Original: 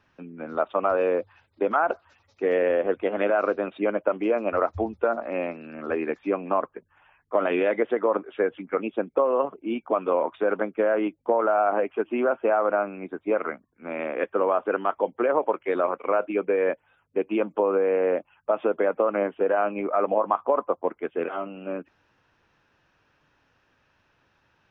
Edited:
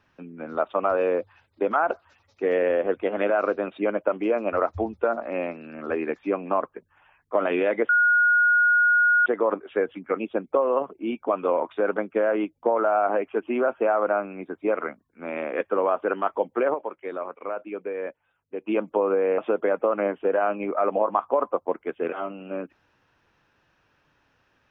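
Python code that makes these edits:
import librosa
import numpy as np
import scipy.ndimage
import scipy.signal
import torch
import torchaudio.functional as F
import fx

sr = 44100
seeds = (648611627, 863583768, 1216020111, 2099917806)

y = fx.edit(x, sr, fx.insert_tone(at_s=7.89, length_s=1.37, hz=1440.0, db=-15.5),
    fx.clip_gain(start_s=15.37, length_s=1.93, db=-8.0),
    fx.cut(start_s=18.01, length_s=0.53), tone=tone)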